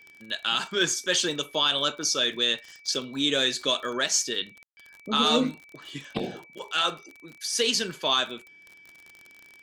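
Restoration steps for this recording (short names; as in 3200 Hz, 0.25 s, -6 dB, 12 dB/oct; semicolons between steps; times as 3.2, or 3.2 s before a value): de-click; notch 2300 Hz, Q 30; room tone fill 4.63–4.77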